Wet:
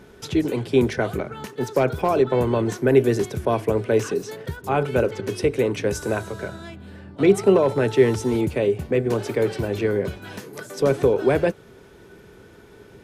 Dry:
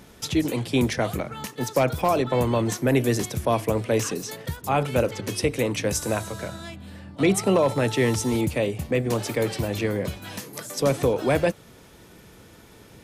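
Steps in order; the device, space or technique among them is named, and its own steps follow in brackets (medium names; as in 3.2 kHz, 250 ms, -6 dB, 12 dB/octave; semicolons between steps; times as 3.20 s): inside a helmet (treble shelf 4.2 kHz -9 dB; small resonant body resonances 400/1500 Hz, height 11 dB, ringing for 55 ms)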